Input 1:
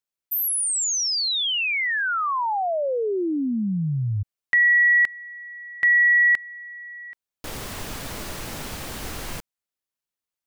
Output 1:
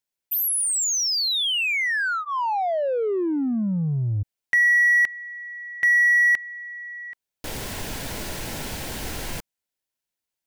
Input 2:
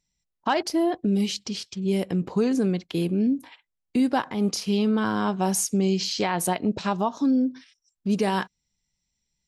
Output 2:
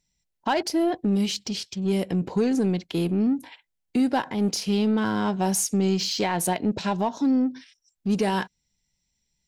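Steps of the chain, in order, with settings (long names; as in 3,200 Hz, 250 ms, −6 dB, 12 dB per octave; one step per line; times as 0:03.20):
notch filter 1,200 Hz, Q 5.2
in parallel at −4 dB: soft clipping −30 dBFS
on the sum: level −1.5 dB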